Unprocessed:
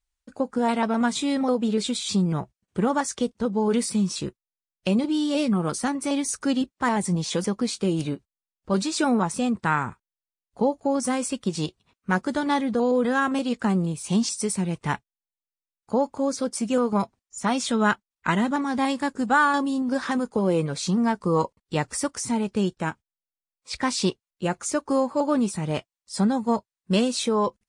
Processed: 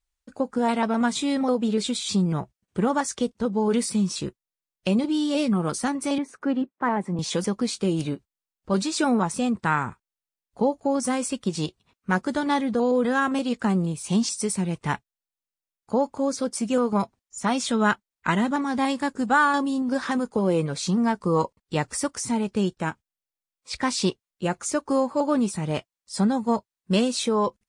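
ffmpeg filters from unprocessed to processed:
ffmpeg -i in.wav -filter_complex "[0:a]asettb=1/sr,asplit=3[link_01][link_02][link_03];[link_01]atrim=end=6.184[link_04];[link_02]atrim=start=6.18:end=7.19,asetpts=PTS-STARTPTS,afade=type=in:duration=0.004:curve=qsin,afade=type=out:start_time=1.006:duration=0.004:curve=qsin,acrossover=split=160 2200:gain=0.0708 1 0.0708[link_05][link_06][link_07];[link_05][link_06][link_07]amix=inputs=3:normalize=0[link_08];[link_03]atrim=start=7.186[link_09];[link_04][link_08]acrossfade=duration=0.004:curve1=hsin:curve2=qsin[link_10];[link_10][link_09]acrossfade=duration=0.004:curve1=qsin:curve2=hsin" out.wav

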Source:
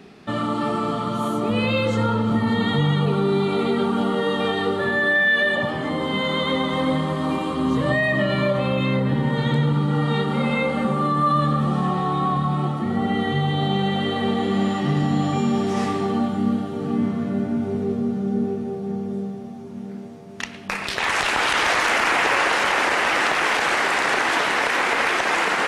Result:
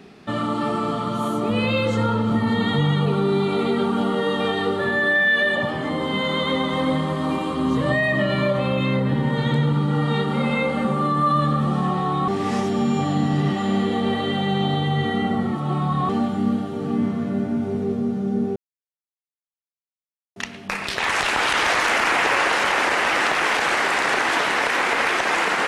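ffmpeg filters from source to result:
ffmpeg -i in.wav -filter_complex "[0:a]asplit=5[link_01][link_02][link_03][link_04][link_05];[link_01]atrim=end=12.282[link_06];[link_02]atrim=start=12.278:end=16.092,asetpts=PTS-STARTPTS,areverse[link_07];[link_03]atrim=start=16.088:end=18.56,asetpts=PTS-STARTPTS,afade=type=out:start_time=2.468:duration=0.004:curve=hsin[link_08];[link_04]atrim=start=18.56:end=20.36,asetpts=PTS-STARTPTS,volume=0[link_09];[link_05]atrim=start=20.36,asetpts=PTS-STARTPTS,afade=type=in:duration=0.004:curve=hsin[link_10];[link_06][link_07]acrossfade=duration=0.004:curve1=hsin:curve2=hsin[link_11];[link_08][link_09][link_10]concat=n=3:v=0:a=1[link_12];[link_11][link_12]acrossfade=duration=0.004:curve1=hsin:curve2=hsin" out.wav

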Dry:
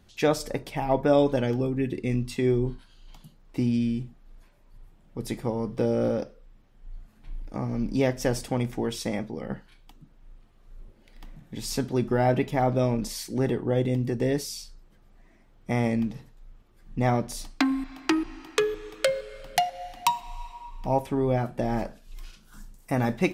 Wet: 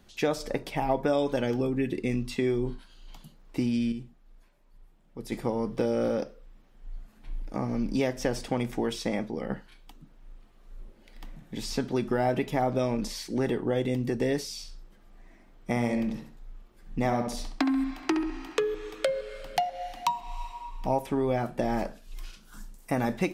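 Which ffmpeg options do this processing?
ffmpeg -i in.wav -filter_complex "[0:a]asettb=1/sr,asplit=3[link_01][link_02][link_03];[link_01]atrim=end=14.534[link_04];[link_02]atrim=start=14.53:end=18.61,asetpts=PTS-STARTPTS,afade=type=in:duration=0.004:curve=qsin,afade=type=out:start_time=4.076:duration=0.004:curve=qsin,asplit=2[link_05][link_06];[link_06]adelay=67,lowpass=frequency=2900:poles=1,volume=-6dB,asplit=2[link_07][link_08];[link_08]adelay=67,lowpass=frequency=2900:poles=1,volume=0.35,asplit=2[link_09][link_10];[link_10]adelay=67,lowpass=frequency=2900:poles=1,volume=0.35,asplit=2[link_11][link_12];[link_12]adelay=67,lowpass=frequency=2900:poles=1,volume=0.35[link_13];[link_05][link_07][link_09][link_11][link_13]amix=inputs=5:normalize=0,atrim=end_sample=179928[link_14];[link_03]atrim=start=18.606[link_15];[link_04][link_14]acrossfade=duration=0.004:curve1=hsin:curve2=qsin[link_16];[link_16][link_15]acrossfade=duration=0.004:curve1=qsin:curve2=hsin,asplit=3[link_17][link_18][link_19];[link_17]atrim=end=3.922[link_20];[link_18]atrim=start=3.918:end=5.322,asetpts=PTS-STARTPTS,volume=-6.5dB[link_21];[link_19]atrim=start=5.318[link_22];[link_20][link_21]acrossfade=duration=0.004:curve1=hsin:curve2=hsin[link_23];[link_23][link_22]acrossfade=duration=0.004:curve1=hsin:curve2=hsin,equalizer=frequency=92:width_type=o:width=1:gain=-9,acrossover=split=960|5500[link_24][link_25][link_26];[link_24]acompressor=threshold=-26dB:ratio=4[link_27];[link_25]acompressor=threshold=-37dB:ratio=4[link_28];[link_26]acompressor=threshold=-50dB:ratio=4[link_29];[link_27][link_28][link_29]amix=inputs=3:normalize=0,volume=2dB" out.wav

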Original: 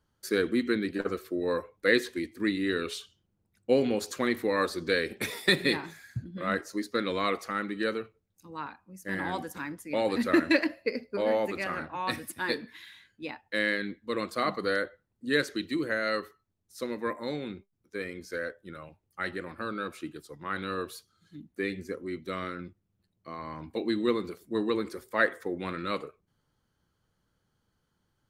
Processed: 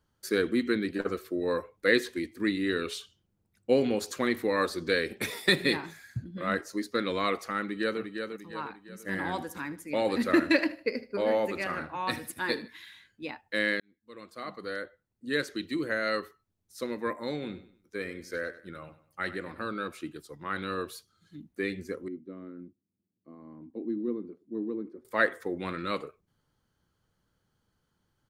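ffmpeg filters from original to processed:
ffmpeg -i in.wav -filter_complex "[0:a]asplit=2[link_01][link_02];[link_02]afade=type=in:start_time=7.61:duration=0.01,afade=type=out:start_time=8.01:duration=0.01,aecho=0:1:350|700|1050|1400|1750:0.501187|0.225534|0.10149|0.0456707|0.0205518[link_03];[link_01][link_03]amix=inputs=2:normalize=0,asettb=1/sr,asplit=3[link_04][link_05][link_06];[link_04]atrim=end=8.844[link_07];[link_05]atrim=start=8.84:end=12.68,asetpts=PTS-STARTPTS,afade=type=in:duration=0.004:curve=qsin,afade=type=out:start_time=3.836:duration=0.004:curve=qsin,aecho=1:1:77|154|231:0.133|0.04|0.012,atrim=end_sample=169344[link_08];[link_06]atrim=start=12.676[link_09];[link_07][link_08]acrossfade=duration=0.004:curve1=hsin:curve2=qsin[link_10];[link_10][link_09]acrossfade=duration=0.004:curve1=qsin:curve2=hsin,asplit=3[link_11][link_12][link_13];[link_11]afade=type=out:start_time=17.41:duration=0.02[link_14];[link_12]aecho=1:1:97|194|291:0.178|0.064|0.023,afade=type=in:start_time=17.41:duration=0.02,afade=type=out:start_time=19.67:duration=0.02[link_15];[link_13]afade=type=in:start_time=19.67:duration=0.02[link_16];[link_14][link_15][link_16]amix=inputs=3:normalize=0,asettb=1/sr,asplit=3[link_17][link_18][link_19];[link_17]atrim=end=22.084[link_20];[link_18]atrim=start=22.08:end=25.05,asetpts=PTS-STARTPTS,afade=type=in:duration=0.004:curve=qsin,afade=type=out:start_time=2.966:duration=0.004:curve=qsin,bandpass=frequency=270:width_type=q:width=2.5[link_21];[link_19]atrim=start=25.046[link_22];[link_20][link_21]acrossfade=duration=0.004:curve1=hsin:curve2=qsin[link_23];[link_23][link_22]acrossfade=duration=0.004:curve1=qsin:curve2=hsin,asplit=2[link_24][link_25];[link_24]atrim=end=13.8,asetpts=PTS-STARTPTS,afade=type=out:start_time=13.796:duration=0.004:curve=hsin[link_26];[link_25]atrim=start=13.8,asetpts=PTS-STARTPTS,afade=type=in:duration=2.24[link_27];[link_26][link_27]concat=n=2:v=0:a=1" out.wav

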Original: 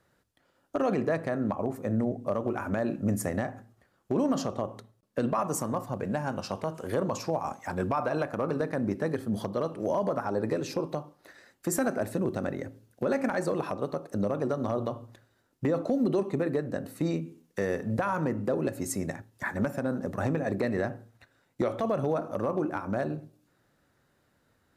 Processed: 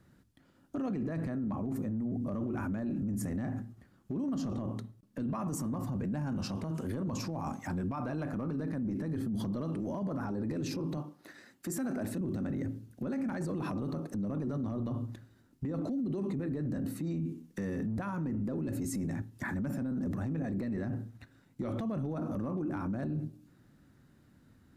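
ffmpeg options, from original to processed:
ffmpeg -i in.wav -filter_complex "[0:a]asettb=1/sr,asplit=3[link_01][link_02][link_03];[link_01]atrim=end=10.974[link_04];[link_02]atrim=start=10.97:end=12.21,asetpts=PTS-STARTPTS,afade=type=in:duration=0.004:curve=qsin,afade=type=out:start_time=1.236:duration=0.004:curve=qsin,highpass=frequency=280:poles=1[link_05];[link_03]atrim=start=12.206[link_06];[link_04][link_05]acrossfade=duration=0.004:curve1=hsin:curve2=qsin[link_07];[link_07][link_06]acrossfade=duration=0.004:curve1=qsin:curve2=hsin,lowshelf=frequency=360:width_type=q:width=1.5:gain=9.5,alimiter=level_in=4.5dB:limit=-24dB:level=0:latency=1:release=13,volume=-4.5dB" out.wav

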